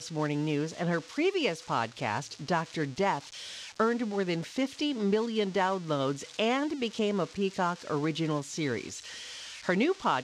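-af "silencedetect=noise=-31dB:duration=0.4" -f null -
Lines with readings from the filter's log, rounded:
silence_start: 3.19
silence_end: 3.80 | silence_duration: 0.61
silence_start: 8.88
silence_end: 9.69 | silence_duration: 0.81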